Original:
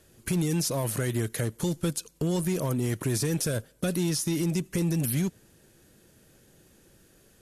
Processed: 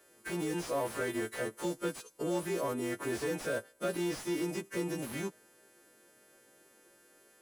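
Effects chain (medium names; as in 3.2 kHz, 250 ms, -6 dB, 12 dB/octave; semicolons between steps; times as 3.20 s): partials quantised in pitch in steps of 2 st; three-band isolator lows -22 dB, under 270 Hz, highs -13 dB, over 2.1 kHz; slew-rate limiter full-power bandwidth 38 Hz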